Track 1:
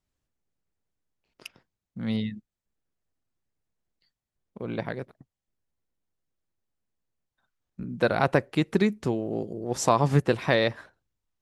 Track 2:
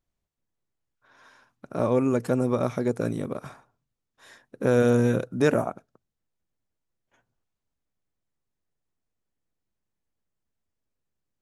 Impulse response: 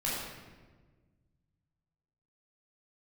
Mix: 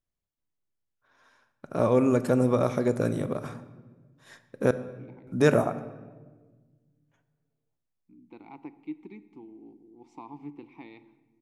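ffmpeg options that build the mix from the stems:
-filter_complex "[0:a]asplit=3[a][b][c];[a]bandpass=f=300:t=q:w=8,volume=0dB[d];[b]bandpass=f=870:t=q:w=8,volume=-6dB[e];[c]bandpass=f=2.24k:t=q:w=8,volume=-9dB[f];[d][e][f]amix=inputs=3:normalize=0,adelay=300,volume=-9.5dB,asplit=2[g][h];[h]volume=-19.5dB[i];[1:a]agate=range=-8dB:threshold=-51dB:ratio=16:detection=peak,volume=0dB,asplit=3[j][k][l];[j]atrim=end=4.71,asetpts=PTS-STARTPTS,afade=t=out:st=4.706:d=0.004:c=hsin[m];[k]atrim=start=4.71:end=5.27,asetpts=PTS-STARTPTS,volume=0[n];[l]atrim=start=5.27,asetpts=PTS-STARTPTS,afade=t=in:d=0.004:c=hsin[o];[m][n][o]concat=n=3:v=0:a=1,asplit=2[p][q];[q]volume=-17.5dB[r];[2:a]atrim=start_sample=2205[s];[i][r]amix=inputs=2:normalize=0[t];[t][s]afir=irnorm=-1:irlink=0[u];[g][p][u]amix=inputs=3:normalize=0"

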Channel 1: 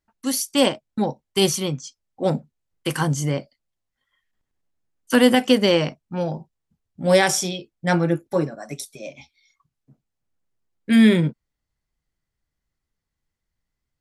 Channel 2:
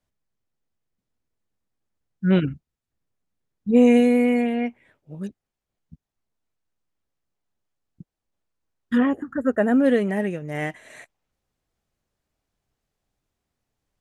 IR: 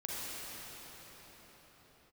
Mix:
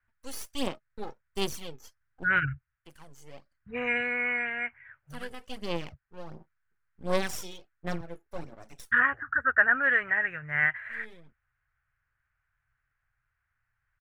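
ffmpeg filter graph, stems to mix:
-filter_complex "[0:a]lowshelf=f=96:g=-12,aeval=exprs='max(val(0),0)':c=same,aphaser=in_gain=1:out_gain=1:delay=2.4:decay=0.53:speed=1.4:type=sinusoidal,volume=-13dB[a];[1:a]firequalizer=gain_entry='entry(130,0);entry(190,-27);entry(1500,14);entry(3600,-16);entry(6900,-28)':delay=0.05:min_phase=1,volume=0.5dB,asplit=2[b][c];[c]apad=whole_len=617477[d];[a][d]sidechaincompress=threshold=-54dB:ratio=4:attack=31:release=627[e];[e][b]amix=inputs=2:normalize=0"

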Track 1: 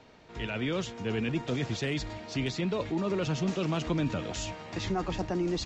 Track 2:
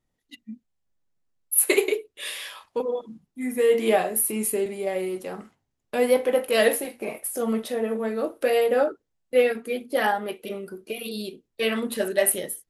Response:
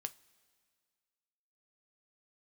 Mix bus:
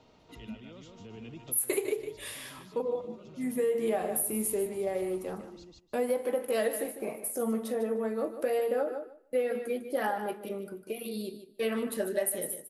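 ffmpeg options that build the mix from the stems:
-filter_complex "[0:a]equalizer=f=1.7k:w=4.5:g=-11.5,bandreject=f=2.3k:w=14,alimiter=level_in=5.5dB:limit=-24dB:level=0:latency=1:release=223,volume=-5.5dB,volume=-5dB,asplit=3[a][b][c];[b]volume=-17.5dB[d];[c]volume=-11dB[e];[1:a]equalizer=f=3.1k:w=0.77:g=-8,volume=-5dB,asplit=4[f][g][h][i];[g]volume=-11.5dB[j];[h]volume=-10dB[k];[i]apad=whole_len=249370[l];[a][l]sidechaincompress=threshold=-54dB:ratio=3:attack=16:release=1110[m];[2:a]atrim=start_sample=2205[n];[d][j]amix=inputs=2:normalize=0[o];[o][n]afir=irnorm=-1:irlink=0[p];[e][k]amix=inputs=2:normalize=0,aecho=0:1:151|302|453:1|0.15|0.0225[q];[m][f][p][q]amix=inputs=4:normalize=0,acompressor=threshold=-26dB:ratio=4"

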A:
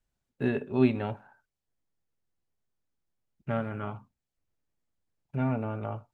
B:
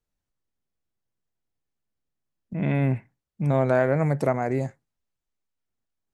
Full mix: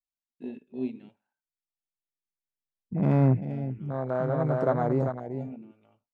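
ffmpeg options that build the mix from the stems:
-filter_complex "[0:a]aemphasis=mode=reproduction:type=bsi,aexciter=amount=3.1:drive=7.5:freq=2.1k,lowshelf=f=170:t=q:w=1.5:g=-10.5,volume=-14.5dB,asplit=2[a][b];[1:a]adynamicsmooth=sensitivity=4:basefreq=3.8k,adelay=400,volume=2.5dB,asplit=2[c][d];[d]volume=-12dB[e];[b]apad=whole_len=288134[f];[c][f]sidechaincompress=threshold=-54dB:ratio=4:attack=16:release=1270[g];[e]aecho=0:1:395:1[h];[a][g][h]amix=inputs=3:normalize=0,afwtdn=0.0282,highshelf=f=2.5k:g=10.5"

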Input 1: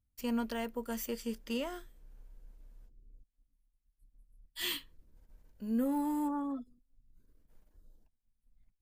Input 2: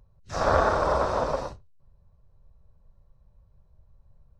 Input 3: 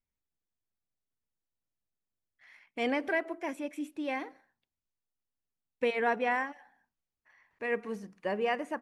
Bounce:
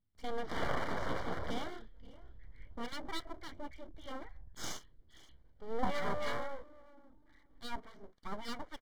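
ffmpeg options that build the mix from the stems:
-filter_complex "[0:a]volume=-1dB,asplit=2[a][b];[b]volume=-21dB[c];[1:a]asubboost=boost=12:cutoff=73,adelay=150,volume=-12.5dB[d];[2:a]acrossover=split=890[e][f];[e]aeval=exprs='val(0)*(1-1/2+1/2*cos(2*PI*3.6*n/s))':c=same[g];[f]aeval=exprs='val(0)*(1-1/2-1/2*cos(2*PI*3.6*n/s))':c=same[h];[g][h]amix=inputs=2:normalize=0,volume=-2.5dB[i];[c]aecho=0:1:528|1056|1584:1|0.17|0.0289[j];[a][d][i][j]amix=inputs=4:normalize=0,lowpass=f=4k:w=0.5412,lowpass=f=4k:w=1.3066,aeval=exprs='abs(val(0))':c=same,asuperstop=centerf=2600:order=8:qfactor=5"

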